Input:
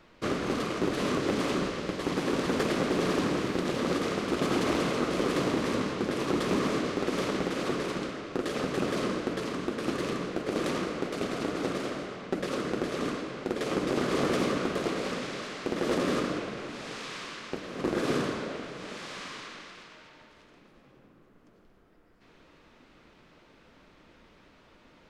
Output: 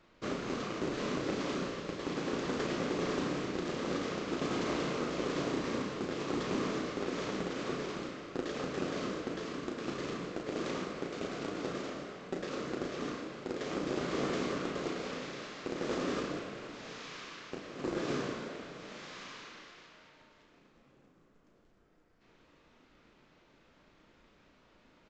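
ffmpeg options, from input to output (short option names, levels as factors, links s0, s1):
-filter_complex "[0:a]aresample=16000,acrusher=bits=5:mode=log:mix=0:aa=0.000001,aresample=44100,asplit=2[s0][s1];[s1]adelay=35,volume=0.531[s2];[s0][s2]amix=inputs=2:normalize=0,volume=0.422"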